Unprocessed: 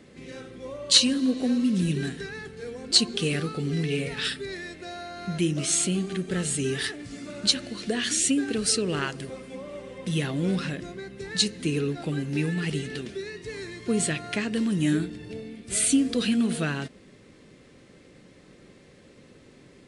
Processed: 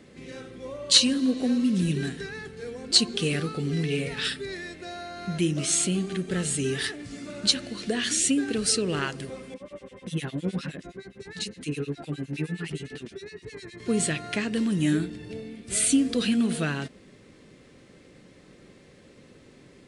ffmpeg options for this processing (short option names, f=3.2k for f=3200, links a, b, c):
-filter_complex "[0:a]asettb=1/sr,asplit=3[a][b][c];[a]atrim=end=9.544[d];[b]atrim=start=9.54:end=13.8,asetpts=PTS-STARTPTS,afade=t=in:d=0.004:c=qsin,afade=t=out:st=4.256:d=0.004:c=qsin,acrossover=split=2000[e][f];[e]aeval=exprs='val(0)*(1-1/2+1/2*cos(2*PI*9.7*n/s))':c=same[g];[f]aeval=exprs='val(0)*(1-1/2-1/2*cos(2*PI*9.7*n/s))':c=same[h];[g][h]amix=inputs=2:normalize=0[i];[c]atrim=start=13.796[j];[d][i]acrossfade=d=0.004:c1=hsin:c2=qsin[k];[k][j]acrossfade=d=0.004:c1=qsin:c2=hsin"